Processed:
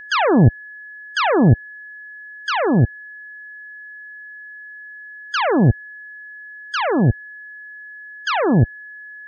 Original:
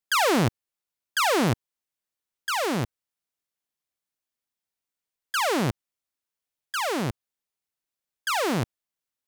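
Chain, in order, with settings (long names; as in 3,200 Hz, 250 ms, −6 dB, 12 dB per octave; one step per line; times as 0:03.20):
gate on every frequency bin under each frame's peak −20 dB strong
in parallel at +2 dB: brickwall limiter −23.5 dBFS, peak gain reduction 8 dB
on the sum: low-shelf EQ 66 Hz +8.5 dB
steady tone 1,700 Hz −35 dBFS
low-shelf EQ 290 Hz +9.5 dB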